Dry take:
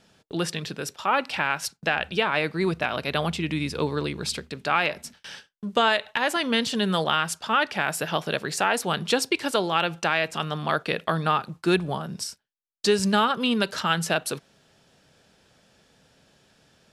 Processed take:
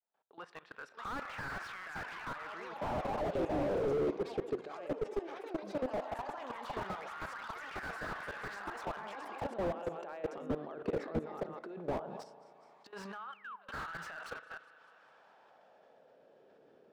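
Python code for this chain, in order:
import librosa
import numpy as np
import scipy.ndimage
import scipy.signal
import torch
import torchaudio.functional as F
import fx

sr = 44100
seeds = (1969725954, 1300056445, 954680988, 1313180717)

y = fx.fade_in_head(x, sr, length_s=2.02)
y = fx.low_shelf(y, sr, hz=240.0, db=-10.0)
y = fx.echo_thinned(y, sr, ms=203, feedback_pct=48, hz=180.0, wet_db=-22)
y = fx.spec_paint(y, sr, seeds[0], shape='fall', start_s=13.32, length_s=0.36, low_hz=500.0, high_hz=3300.0, level_db=-18.0)
y = fx.over_compress(y, sr, threshold_db=-29.0, ratio=-0.5)
y = fx.high_shelf(y, sr, hz=3800.0, db=-6.5)
y = 10.0 ** (-16.5 / 20.0) * np.tanh(y / 10.0 ** (-16.5 / 20.0))
y = fx.echo_pitch(y, sr, ms=690, semitones=5, count=3, db_per_echo=-3.0)
y = fx.filter_lfo_bandpass(y, sr, shape='sine', hz=0.16, low_hz=390.0, high_hz=1500.0, q=2.2)
y = fx.level_steps(y, sr, step_db=18)
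y = fx.rev_spring(y, sr, rt60_s=2.4, pass_ms=(35,), chirp_ms=55, drr_db=18.0)
y = fx.slew_limit(y, sr, full_power_hz=4.9)
y = y * 10.0 ** (9.0 / 20.0)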